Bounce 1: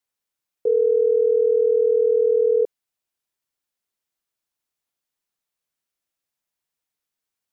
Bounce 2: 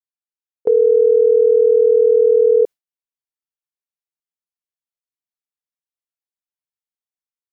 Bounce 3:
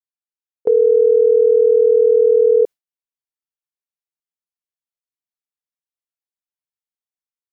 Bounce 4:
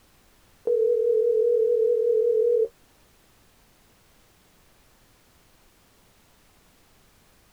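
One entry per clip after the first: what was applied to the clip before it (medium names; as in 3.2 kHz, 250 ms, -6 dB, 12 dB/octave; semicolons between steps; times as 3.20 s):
level rider gain up to 6 dB; gate with hold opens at -8 dBFS
no audible change
flange 1 Hz, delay 9.4 ms, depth 5.5 ms, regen +40%; added noise pink -53 dBFS; trim -5.5 dB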